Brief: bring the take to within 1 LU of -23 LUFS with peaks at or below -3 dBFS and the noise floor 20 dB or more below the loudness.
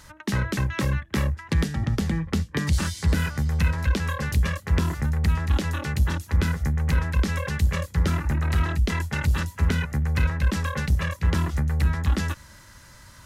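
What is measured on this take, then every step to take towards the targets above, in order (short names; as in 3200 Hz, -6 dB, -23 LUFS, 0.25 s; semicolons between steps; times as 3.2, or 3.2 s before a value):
loudness -25.0 LUFS; peak -12.0 dBFS; loudness target -23.0 LUFS
-> gain +2 dB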